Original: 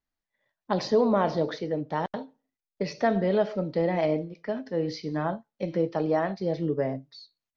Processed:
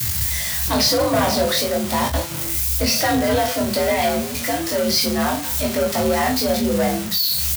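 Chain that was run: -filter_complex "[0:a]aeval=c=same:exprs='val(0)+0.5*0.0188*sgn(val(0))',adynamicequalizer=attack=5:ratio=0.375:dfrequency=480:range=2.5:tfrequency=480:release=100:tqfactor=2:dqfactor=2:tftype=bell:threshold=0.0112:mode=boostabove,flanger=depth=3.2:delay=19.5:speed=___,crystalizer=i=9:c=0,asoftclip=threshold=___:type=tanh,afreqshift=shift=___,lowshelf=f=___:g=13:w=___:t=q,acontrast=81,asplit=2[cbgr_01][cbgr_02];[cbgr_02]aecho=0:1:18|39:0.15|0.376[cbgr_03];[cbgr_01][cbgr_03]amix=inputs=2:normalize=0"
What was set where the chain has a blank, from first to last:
0.99, 0.106, 67, 220, 1.5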